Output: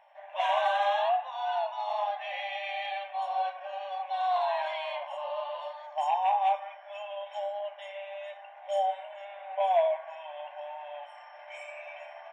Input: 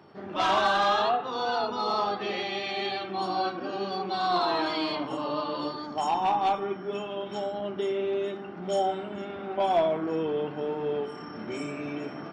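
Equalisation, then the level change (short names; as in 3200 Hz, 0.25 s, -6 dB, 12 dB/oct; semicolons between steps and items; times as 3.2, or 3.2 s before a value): brick-wall FIR high-pass 540 Hz; high shelf 6300 Hz -8.5 dB; fixed phaser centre 1300 Hz, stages 6; 0.0 dB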